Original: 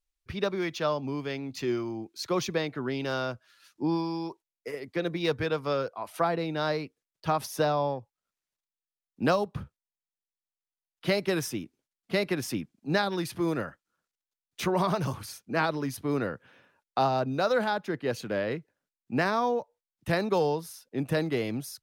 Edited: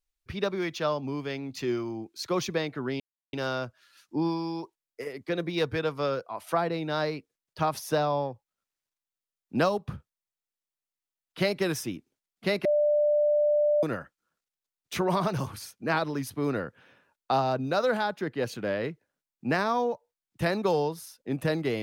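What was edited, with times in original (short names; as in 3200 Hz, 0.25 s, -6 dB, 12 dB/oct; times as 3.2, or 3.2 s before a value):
3 insert silence 0.33 s
12.32–13.5 bleep 593 Hz -20 dBFS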